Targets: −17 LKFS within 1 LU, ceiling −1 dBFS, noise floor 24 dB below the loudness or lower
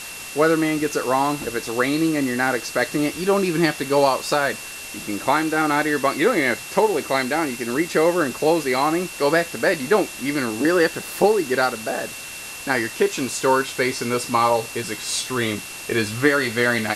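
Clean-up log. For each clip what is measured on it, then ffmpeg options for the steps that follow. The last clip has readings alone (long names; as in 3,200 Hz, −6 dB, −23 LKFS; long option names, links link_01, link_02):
interfering tone 2,700 Hz; level of the tone −37 dBFS; background noise floor −35 dBFS; target noise floor −45 dBFS; integrated loudness −21.0 LKFS; sample peak −2.5 dBFS; target loudness −17.0 LKFS
→ -af "bandreject=frequency=2700:width=30"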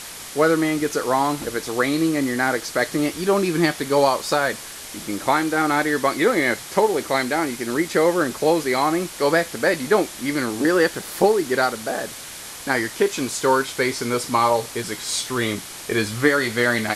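interfering tone none found; background noise floor −36 dBFS; target noise floor −45 dBFS
→ -af "afftdn=noise_reduction=9:noise_floor=-36"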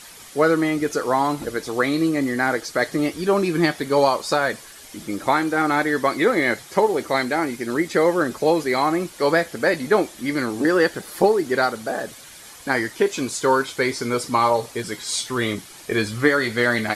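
background noise floor −43 dBFS; target noise floor −46 dBFS
→ -af "afftdn=noise_reduction=6:noise_floor=-43"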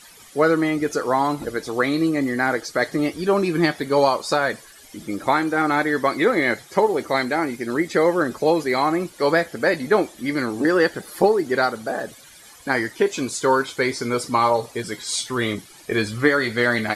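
background noise floor −47 dBFS; integrated loudness −21.5 LKFS; sample peak −2.0 dBFS; target loudness −17.0 LKFS
→ -af "volume=4.5dB,alimiter=limit=-1dB:level=0:latency=1"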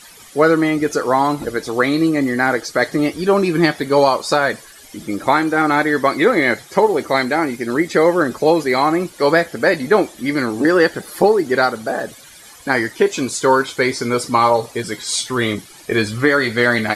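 integrated loudness −17.0 LKFS; sample peak −1.0 dBFS; background noise floor −42 dBFS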